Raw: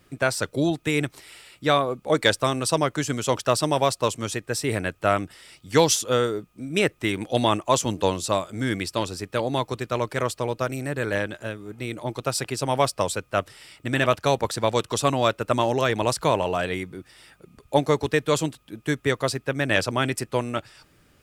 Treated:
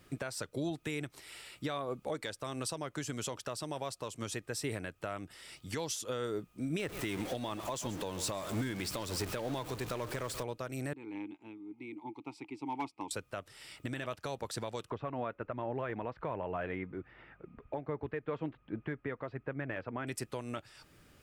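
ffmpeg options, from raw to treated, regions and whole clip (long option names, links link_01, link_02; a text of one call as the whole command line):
ffmpeg -i in.wav -filter_complex "[0:a]asettb=1/sr,asplit=3[link_01][link_02][link_03];[link_01]atrim=end=6.794[link_04];[link_02]atrim=start=6.79:end=10.43,asetpts=PTS-STARTPTS,afade=type=in:duration=0.004:curve=qsin,afade=type=out:start_time=3.636:duration=0.004:curve=qsin,aeval=exprs='val(0)+0.5*0.0376*sgn(val(0))':channel_layout=same,aecho=1:1:132:0.15,atrim=end_sample=160524[link_05];[link_03]atrim=start=10.426[link_06];[link_04][link_05]acrossfade=duration=0.004:curve1=hsin:curve2=qsin[link_07];[link_07][link_06]acrossfade=duration=0.004:curve1=qsin:curve2=hsin,asettb=1/sr,asplit=3[link_08][link_09][link_10];[link_08]atrim=end=10.934[link_11];[link_09]atrim=start=10.93:end=13.11,asetpts=PTS-STARTPTS,afade=type=in:duration=0.004:curve=qsin,afade=type=out:start_time=2.176:duration=0.004:curve=qsin,asplit=3[link_12][link_13][link_14];[link_12]bandpass=frequency=300:width_type=q:width=8,volume=0dB[link_15];[link_13]bandpass=frequency=870:width_type=q:width=8,volume=-6dB[link_16];[link_14]bandpass=frequency=2240:width_type=q:width=8,volume=-9dB[link_17];[link_15][link_16][link_17]amix=inputs=3:normalize=0,asoftclip=type=hard:threshold=-26.5dB[link_18];[link_10]atrim=start=13.106[link_19];[link_11][link_18]acrossfade=duration=0.004:curve1=hsin:curve2=qsin[link_20];[link_20][link_19]acrossfade=duration=0.004:curve1=qsin:curve2=hsin,asettb=1/sr,asplit=3[link_21][link_22][link_23];[link_21]atrim=end=14.904[link_24];[link_22]atrim=start=14.9:end=20.07,asetpts=PTS-STARTPTS,afade=type=in:duration=0.004:curve=qsin,afade=type=out:start_time=5.166:duration=0.004:curve=qsin,lowpass=frequency=2200:width=0.5412,lowpass=frequency=2200:width=1.3066,aphaser=in_gain=1:out_gain=1:delay=4.3:decay=0.25:speed=1.3:type=sinusoidal[link_25];[link_23]atrim=start=20.066[link_26];[link_24][link_25]acrossfade=duration=0.004:curve1=hsin:curve2=qsin[link_27];[link_27][link_26]acrossfade=duration=0.004:curve1=qsin:curve2=hsin,acompressor=threshold=-24dB:ratio=3,alimiter=limit=-23.5dB:level=0:latency=1:release=396,volume=-2.5dB" out.wav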